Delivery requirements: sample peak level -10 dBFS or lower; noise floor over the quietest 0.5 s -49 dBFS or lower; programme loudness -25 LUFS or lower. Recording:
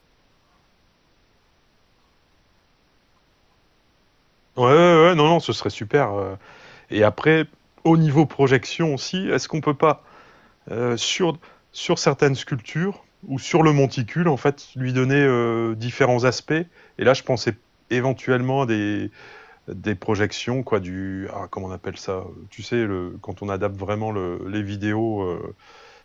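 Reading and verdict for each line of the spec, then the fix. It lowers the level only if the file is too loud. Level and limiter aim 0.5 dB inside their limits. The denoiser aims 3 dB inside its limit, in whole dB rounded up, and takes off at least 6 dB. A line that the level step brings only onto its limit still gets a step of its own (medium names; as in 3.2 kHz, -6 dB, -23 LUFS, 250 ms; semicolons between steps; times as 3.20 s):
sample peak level -4.5 dBFS: fail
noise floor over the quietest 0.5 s -61 dBFS: pass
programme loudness -21.5 LUFS: fail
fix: trim -4 dB; peak limiter -10.5 dBFS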